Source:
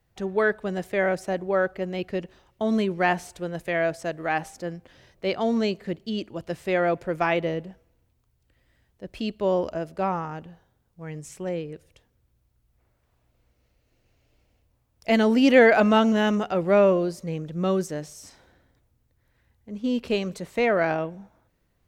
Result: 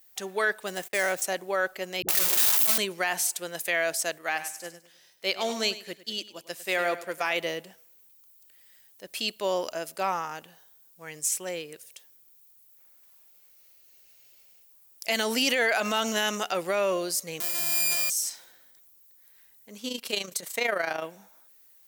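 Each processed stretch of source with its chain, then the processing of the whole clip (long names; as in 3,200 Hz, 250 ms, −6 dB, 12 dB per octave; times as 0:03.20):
0:00.67–0:01.22: running median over 9 samples + noise gate −46 dBFS, range −24 dB
0:02.02–0:02.78: sign of each sample alone + all-pass dispersion highs, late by 67 ms, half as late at 350 Hz
0:04.18–0:07.33: repeating echo 101 ms, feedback 38%, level −11 dB + expander for the loud parts, over −40 dBFS
0:17.40–0:18.10: samples sorted by size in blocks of 128 samples + flutter between parallel walls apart 3.2 metres, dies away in 0.94 s + expander for the loud parts, over −29 dBFS
0:19.88–0:21.04: notch filter 2,600 Hz, Q 19 + amplitude modulation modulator 27 Hz, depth 55%
whole clip: RIAA equalisation recording; brickwall limiter −16 dBFS; spectral tilt +2 dB per octave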